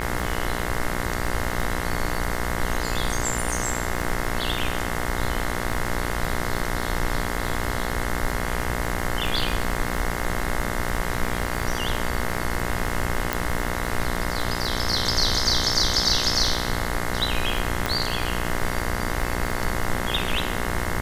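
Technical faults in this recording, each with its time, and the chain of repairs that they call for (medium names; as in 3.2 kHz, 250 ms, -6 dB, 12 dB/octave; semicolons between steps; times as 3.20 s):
buzz 60 Hz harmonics 36 -29 dBFS
crackle 35 per s -28 dBFS
13.33 s: pop
17.86 s: pop -8 dBFS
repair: de-click; de-hum 60 Hz, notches 36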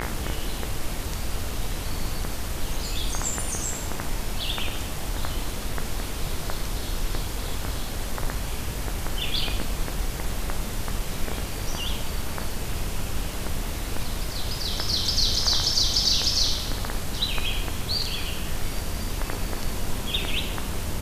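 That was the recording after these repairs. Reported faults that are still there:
nothing left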